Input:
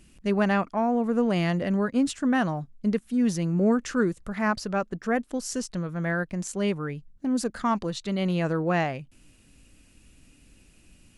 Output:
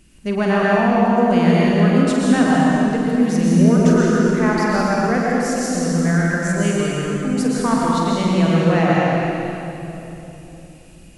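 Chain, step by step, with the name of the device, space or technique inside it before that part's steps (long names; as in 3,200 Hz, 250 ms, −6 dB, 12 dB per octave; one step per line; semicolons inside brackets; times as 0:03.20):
tunnel (flutter between parallel walls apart 8.3 metres, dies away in 0.38 s; convolution reverb RT60 3.2 s, pre-delay 109 ms, DRR −5 dB)
level +2.5 dB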